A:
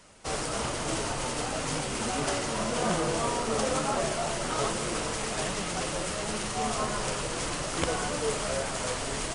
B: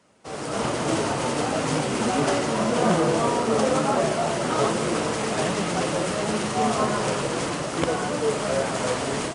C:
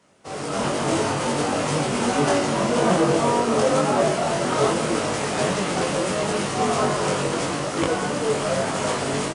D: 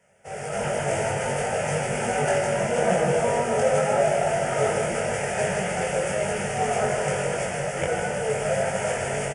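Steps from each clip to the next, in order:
high-pass filter 170 Hz 12 dB per octave; spectral tilt −2 dB per octave; automatic gain control gain up to 12 dB; level −5 dB
double-tracking delay 21 ms −2.5 dB
phaser with its sweep stopped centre 1,100 Hz, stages 6; single-tap delay 156 ms −6.5 dB

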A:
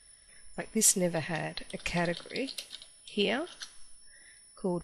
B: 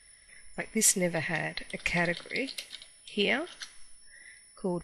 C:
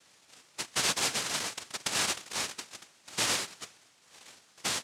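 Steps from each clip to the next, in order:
parametric band 2,100 Hz +10 dB 0.39 octaves
soft clipping −16.5 dBFS, distortion −20 dB; cochlear-implant simulation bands 1; level −1 dB

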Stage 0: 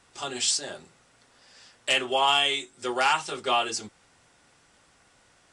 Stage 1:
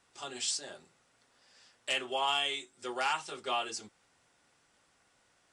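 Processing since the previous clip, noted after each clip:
low-shelf EQ 140 Hz −5.5 dB
level −8.5 dB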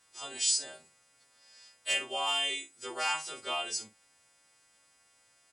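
every partial snapped to a pitch grid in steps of 2 semitones
double-tracking delay 47 ms −11.5 dB
level −2.5 dB

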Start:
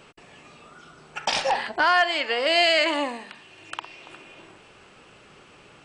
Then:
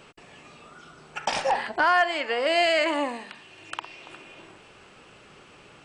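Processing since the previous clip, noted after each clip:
dynamic equaliser 4,000 Hz, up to −8 dB, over −38 dBFS, Q 0.98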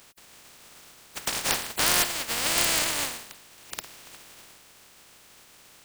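compressing power law on the bin magnitudes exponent 0.14
level −2 dB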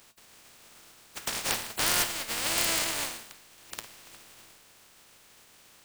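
tuned comb filter 110 Hz, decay 0.31 s, harmonics all, mix 60%
level +2 dB

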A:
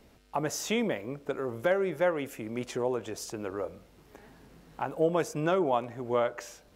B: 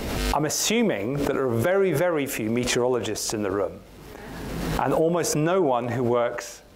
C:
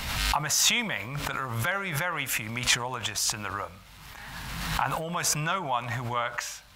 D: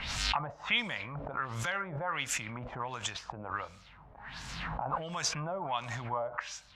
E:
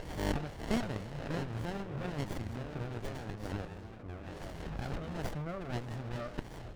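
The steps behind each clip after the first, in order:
brickwall limiter −21.5 dBFS, peak gain reduction 7 dB; background raised ahead of every attack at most 28 dB per second; level +8.5 dB
drawn EQ curve 140 Hz 0 dB, 400 Hz −19 dB, 960 Hz +4 dB, 3,900 Hz +8 dB, 5,500 Hz +5 dB; level −3.5 dB
auto-filter low-pass sine 1.4 Hz 590–7,300 Hz; level −7 dB
delay with pitch and tempo change per echo 354 ms, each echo −5 semitones, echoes 3, each echo −6 dB; windowed peak hold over 33 samples; level −2 dB

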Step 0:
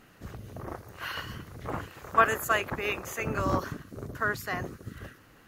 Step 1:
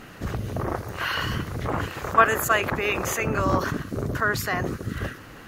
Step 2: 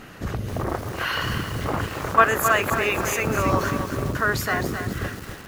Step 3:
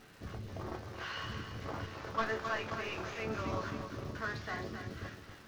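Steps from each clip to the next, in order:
high-shelf EQ 8,600 Hz −5.5 dB; in parallel at −1 dB: compressor whose output falls as the input rises −40 dBFS, ratio −1; on the sum: level +4.5 dB
feedback echo at a low word length 265 ms, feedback 55%, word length 6 bits, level −7 dB; level +1 dB
variable-slope delta modulation 32 kbit/s; surface crackle 510 per second −37 dBFS; resonators tuned to a chord D2 major, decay 0.22 s; level −5.5 dB

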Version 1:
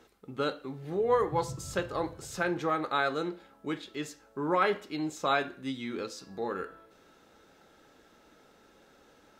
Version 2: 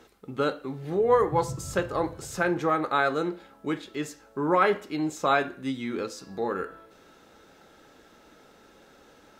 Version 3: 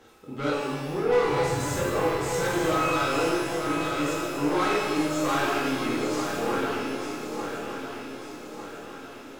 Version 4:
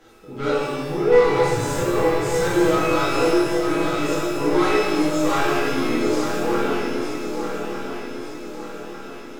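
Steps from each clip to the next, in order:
dynamic equaliser 3,800 Hz, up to −5 dB, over −51 dBFS, Q 1.1; level +5 dB
soft clipping −26.5 dBFS, distortion −7 dB; feedback echo with a long and a short gap by turns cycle 1,200 ms, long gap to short 3 to 1, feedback 46%, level −7 dB; reverb with rising layers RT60 1.3 s, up +12 semitones, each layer −8 dB, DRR −5.5 dB; level −2 dB
rectangular room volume 39 cubic metres, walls mixed, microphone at 0.66 metres

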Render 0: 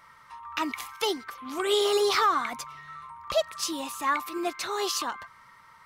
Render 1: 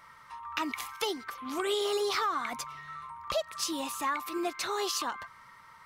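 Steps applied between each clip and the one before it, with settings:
downward compressor 3 to 1, threshold −29 dBFS, peak gain reduction 7.5 dB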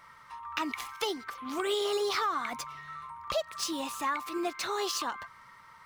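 running median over 3 samples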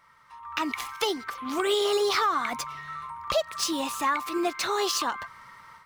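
automatic gain control gain up to 11 dB
level −5.5 dB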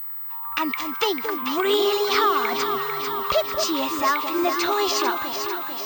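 delay that swaps between a low-pass and a high-pass 223 ms, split 810 Hz, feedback 80%, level −5.5 dB
switching amplifier with a slow clock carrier 16,000 Hz
level +4 dB

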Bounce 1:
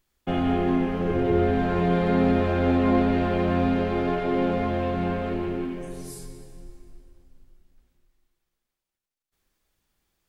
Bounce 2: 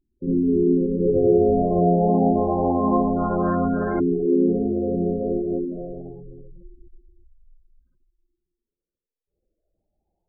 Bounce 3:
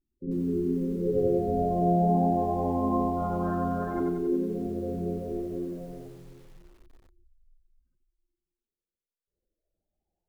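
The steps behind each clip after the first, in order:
auto-filter low-pass saw up 0.25 Hz 310–1,600 Hz; gate on every frequency bin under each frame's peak −15 dB strong; backwards echo 52 ms −5.5 dB
feedback echo at a low word length 92 ms, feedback 55%, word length 8 bits, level −4.5 dB; level −8.5 dB

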